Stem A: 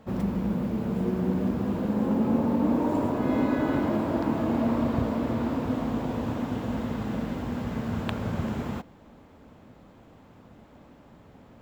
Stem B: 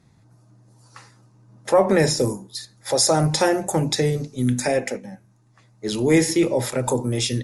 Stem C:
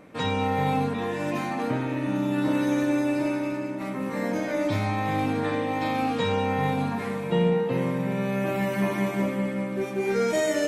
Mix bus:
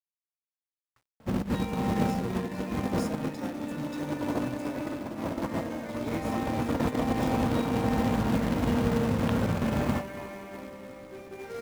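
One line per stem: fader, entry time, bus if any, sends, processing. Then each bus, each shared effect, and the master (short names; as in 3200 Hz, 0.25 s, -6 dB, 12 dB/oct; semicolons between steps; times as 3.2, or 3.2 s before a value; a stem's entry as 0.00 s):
+2.5 dB, 1.20 s, no send, echo send -13 dB, notch 400 Hz, Q 12; negative-ratio compressor -30 dBFS, ratio -0.5
-18.0 dB, 0.00 s, no send, no echo send, low shelf 180 Hz +7 dB; stepped notch 2.5 Hz 250–1800 Hz
-5.0 dB, 1.35 s, no send, echo send -11 dB, tone controls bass -10 dB, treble +2 dB; de-hum 195 Hz, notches 3; limiter -20.5 dBFS, peak gain reduction 5.5 dB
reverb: off
echo: echo 0.279 s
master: companded quantiser 4-bit; high shelf 3200 Hz -8.5 dB; upward expander 1.5:1, over -40 dBFS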